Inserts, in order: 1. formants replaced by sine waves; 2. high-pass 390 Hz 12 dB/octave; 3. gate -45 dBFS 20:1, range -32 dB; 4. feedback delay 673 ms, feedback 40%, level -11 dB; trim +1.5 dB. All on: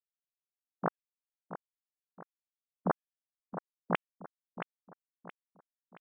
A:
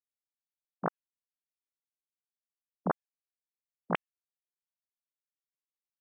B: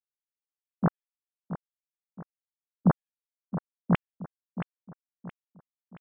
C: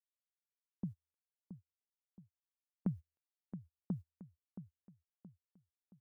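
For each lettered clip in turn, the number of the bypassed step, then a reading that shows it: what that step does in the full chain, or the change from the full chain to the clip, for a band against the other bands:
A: 4, echo-to-direct -10.0 dB to none; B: 2, 125 Hz band +14.0 dB; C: 1, 1 kHz band -27.5 dB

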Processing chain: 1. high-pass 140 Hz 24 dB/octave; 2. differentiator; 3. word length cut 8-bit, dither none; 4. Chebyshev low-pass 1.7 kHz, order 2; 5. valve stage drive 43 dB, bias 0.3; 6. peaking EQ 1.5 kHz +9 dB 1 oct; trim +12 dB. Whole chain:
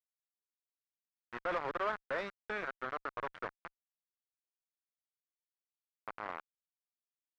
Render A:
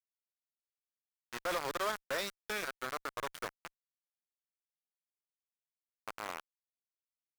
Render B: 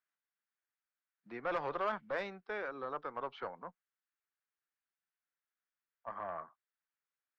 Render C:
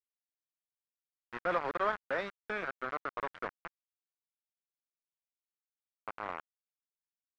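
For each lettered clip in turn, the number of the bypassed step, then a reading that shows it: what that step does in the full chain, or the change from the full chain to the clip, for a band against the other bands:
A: 4, 4 kHz band +10.5 dB; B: 3, distortion -4 dB; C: 5, crest factor change +3.0 dB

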